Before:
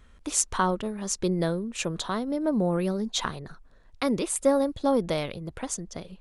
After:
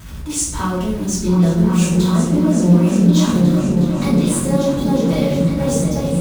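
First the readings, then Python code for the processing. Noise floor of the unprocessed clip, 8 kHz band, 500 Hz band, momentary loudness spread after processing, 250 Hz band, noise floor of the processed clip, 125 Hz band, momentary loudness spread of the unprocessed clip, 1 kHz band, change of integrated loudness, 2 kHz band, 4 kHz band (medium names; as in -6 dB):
-54 dBFS, +6.5 dB, +7.0 dB, 8 LU, +15.0 dB, -26 dBFS, +19.0 dB, 11 LU, +4.0 dB, +11.5 dB, +4.5 dB, +6.0 dB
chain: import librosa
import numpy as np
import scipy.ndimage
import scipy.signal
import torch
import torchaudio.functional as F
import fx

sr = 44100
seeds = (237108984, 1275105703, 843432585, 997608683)

p1 = x + 0.5 * 10.0 ** (-30.5 / 20.0) * np.sign(x)
p2 = scipy.signal.sosfilt(scipy.signal.butter(2, 69.0, 'highpass', fs=sr, output='sos'), p1)
p3 = fx.bass_treble(p2, sr, bass_db=10, treble_db=5)
p4 = p3 + fx.echo_opening(p3, sr, ms=362, hz=200, octaves=2, feedback_pct=70, wet_db=0, dry=0)
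p5 = fx.room_shoebox(p4, sr, seeds[0], volume_m3=200.0, walls='mixed', distance_m=2.8)
p6 = fx.attack_slew(p5, sr, db_per_s=160.0)
y = p6 * librosa.db_to_amplitude(-8.5)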